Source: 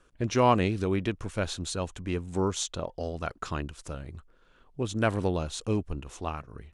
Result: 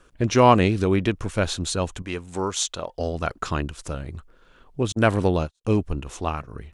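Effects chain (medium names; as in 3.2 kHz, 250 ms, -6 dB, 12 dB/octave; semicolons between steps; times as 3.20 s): 2.02–2.99 s: bass shelf 460 Hz -10.5 dB; 4.92–5.65 s: gate -30 dBFS, range -51 dB; trim +7 dB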